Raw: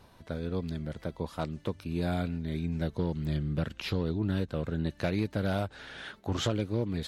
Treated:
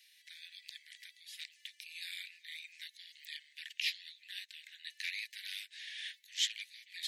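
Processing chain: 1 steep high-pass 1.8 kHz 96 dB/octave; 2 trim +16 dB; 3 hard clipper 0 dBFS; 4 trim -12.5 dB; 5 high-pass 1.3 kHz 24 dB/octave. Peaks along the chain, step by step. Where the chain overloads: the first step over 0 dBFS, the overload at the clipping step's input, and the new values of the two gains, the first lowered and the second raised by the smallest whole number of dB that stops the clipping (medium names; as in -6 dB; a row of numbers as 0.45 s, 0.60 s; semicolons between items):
-21.0 dBFS, -5.0 dBFS, -5.0 dBFS, -17.5 dBFS, -18.5 dBFS; nothing clips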